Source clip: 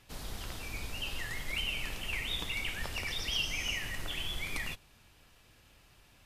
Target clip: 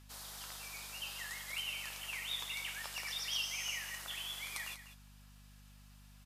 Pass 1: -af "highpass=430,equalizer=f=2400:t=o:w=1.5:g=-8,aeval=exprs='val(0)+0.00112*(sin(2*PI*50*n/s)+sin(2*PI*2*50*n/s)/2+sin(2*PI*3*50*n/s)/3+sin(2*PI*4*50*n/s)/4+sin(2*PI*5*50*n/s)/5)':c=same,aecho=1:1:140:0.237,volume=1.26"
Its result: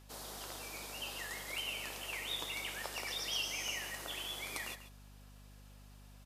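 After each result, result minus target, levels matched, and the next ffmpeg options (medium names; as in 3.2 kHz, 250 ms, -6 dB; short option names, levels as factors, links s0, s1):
500 Hz band +10.5 dB; echo 54 ms early
-af "highpass=1100,equalizer=f=2400:t=o:w=1.5:g=-8,aeval=exprs='val(0)+0.00112*(sin(2*PI*50*n/s)+sin(2*PI*2*50*n/s)/2+sin(2*PI*3*50*n/s)/3+sin(2*PI*4*50*n/s)/4+sin(2*PI*5*50*n/s)/5)':c=same,aecho=1:1:140:0.237,volume=1.26"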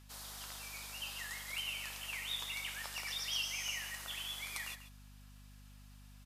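echo 54 ms early
-af "highpass=1100,equalizer=f=2400:t=o:w=1.5:g=-8,aeval=exprs='val(0)+0.00112*(sin(2*PI*50*n/s)+sin(2*PI*2*50*n/s)/2+sin(2*PI*3*50*n/s)/3+sin(2*PI*4*50*n/s)/4+sin(2*PI*5*50*n/s)/5)':c=same,aecho=1:1:194:0.237,volume=1.26"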